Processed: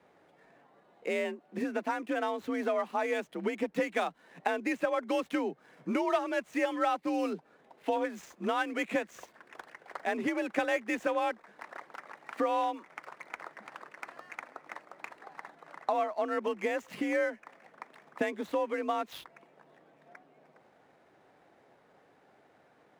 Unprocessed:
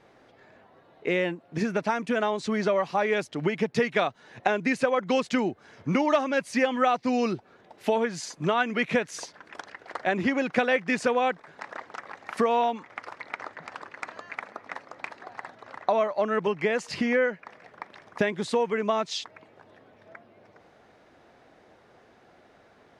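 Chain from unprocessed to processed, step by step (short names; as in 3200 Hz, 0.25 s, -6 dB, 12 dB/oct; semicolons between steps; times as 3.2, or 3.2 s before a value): median filter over 9 samples; frequency shift +47 Hz; gain -6 dB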